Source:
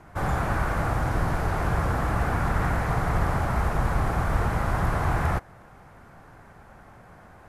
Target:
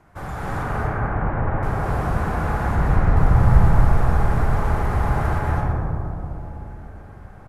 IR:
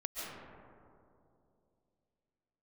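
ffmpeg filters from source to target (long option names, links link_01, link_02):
-filter_complex "[0:a]asettb=1/sr,asplit=3[link_01][link_02][link_03];[link_01]atrim=end=0.634[link_04];[link_02]atrim=start=0.63:end=1.63,asetpts=PTS-STARTPTS,afade=type=in:duration=0.004:curve=qsin,afade=type=out:start_time=0.996:duration=0.004:curve=qsin,lowpass=frequency=2300:width=0.5412,lowpass=frequency=2300:width=1.3066[link_05];[link_03]atrim=start=1.626[link_06];[link_04][link_05]acrossfade=duration=0.004:curve1=hsin:curve2=qsin[link_07];[link_07][link_06]acrossfade=duration=0.004:curve1=qsin:curve2=hsin,asettb=1/sr,asplit=3[link_08][link_09][link_10];[link_08]atrim=end=2.754[link_11];[link_09]atrim=start=2.75:end=3.17,asetpts=PTS-STARTPTS,afade=type=in:duration=0.004:curve=qsin,afade=type=out:start_time=0.416:duration=0.004:curve=qsin,aemphasis=mode=reproduction:type=bsi[link_12];[link_10]atrim=start=3.166[link_13];[link_11][link_12]acrossfade=duration=0.004:curve1=hsin:curve2=qsin[link_14];[link_14][link_13]acrossfade=duration=0.004:curve1=qsin:curve2=hsin,aecho=1:1:123|246|369|492|615:0.299|0.134|0.0605|0.0272|0.0122[link_15];[1:a]atrim=start_sample=2205,asetrate=28665,aresample=44100[link_16];[link_15][link_16]afir=irnorm=-1:irlink=0,volume=-3.5dB"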